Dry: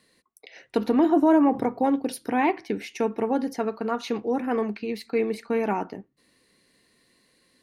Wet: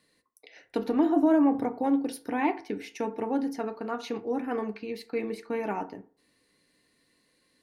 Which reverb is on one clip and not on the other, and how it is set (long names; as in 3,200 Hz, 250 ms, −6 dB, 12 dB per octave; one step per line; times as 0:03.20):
feedback delay network reverb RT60 0.44 s, low-frequency decay 0.8×, high-frequency decay 0.45×, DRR 8.5 dB
level −5.5 dB